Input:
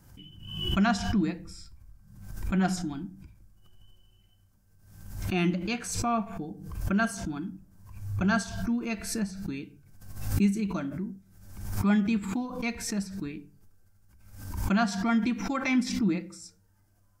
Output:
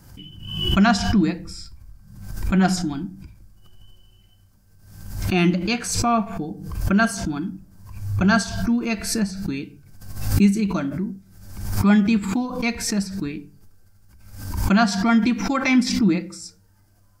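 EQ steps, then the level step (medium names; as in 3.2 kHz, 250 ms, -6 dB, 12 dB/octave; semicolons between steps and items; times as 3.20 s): peaking EQ 4.7 kHz +5 dB 0.3 oct; +8.0 dB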